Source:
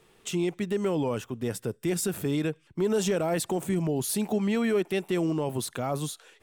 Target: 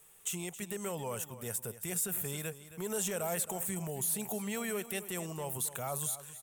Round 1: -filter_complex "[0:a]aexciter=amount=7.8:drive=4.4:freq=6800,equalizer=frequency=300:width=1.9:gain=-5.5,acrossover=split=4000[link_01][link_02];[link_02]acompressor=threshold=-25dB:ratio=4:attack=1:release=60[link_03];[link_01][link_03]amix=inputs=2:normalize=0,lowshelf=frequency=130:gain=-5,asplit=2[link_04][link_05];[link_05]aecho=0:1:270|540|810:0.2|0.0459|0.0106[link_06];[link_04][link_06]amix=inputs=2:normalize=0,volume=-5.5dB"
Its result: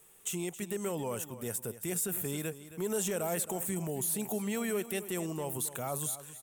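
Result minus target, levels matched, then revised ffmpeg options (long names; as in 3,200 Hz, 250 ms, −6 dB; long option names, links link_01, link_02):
250 Hz band +3.0 dB
-filter_complex "[0:a]aexciter=amount=7.8:drive=4.4:freq=6800,equalizer=frequency=300:width=1.9:gain=-15.5,acrossover=split=4000[link_01][link_02];[link_02]acompressor=threshold=-25dB:ratio=4:attack=1:release=60[link_03];[link_01][link_03]amix=inputs=2:normalize=0,lowshelf=frequency=130:gain=-5,asplit=2[link_04][link_05];[link_05]aecho=0:1:270|540|810:0.2|0.0459|0.0106[link_06];[link_04][link_06]amix=inputs=2:normalize=0,volume=-5.5dB"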